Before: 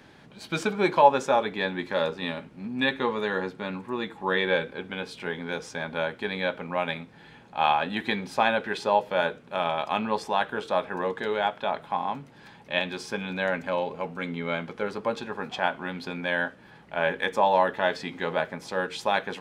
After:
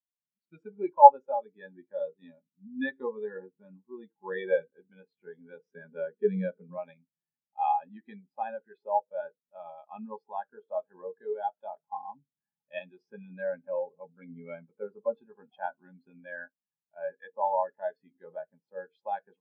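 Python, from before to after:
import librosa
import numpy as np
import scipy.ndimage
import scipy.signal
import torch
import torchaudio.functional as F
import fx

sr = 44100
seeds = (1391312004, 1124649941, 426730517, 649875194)

y = fx.rider(x, sr, range_db=4, speed_s=2.0)
y = fx.cabinet(y, sr, low_hz=100.0, low_slope=12, high_hz=7700.0, hz=(130.0, 190.0, 420.0, 720.0, 1900.0), db=(-6, 9, 7, -7, 3), at=(5.65, 6.78))
y = fx.spectral_expand(y, sr, expansion=2.5)
y = F.gain(torch.from_numpy(y), 5.0).numpy()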